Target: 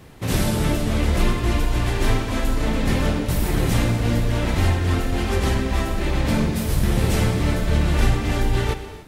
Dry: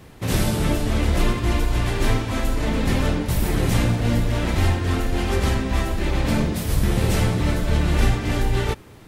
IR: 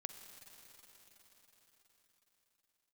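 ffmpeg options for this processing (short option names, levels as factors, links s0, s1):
-filter_complex "[1:a]atrim=start_sample=2205,afade=t=out:st=0.35:d=0.01,atrim=end_sample=15876[s0];[0:a][s0]afir=irnorm=-1:irlink=0,volume=1.58"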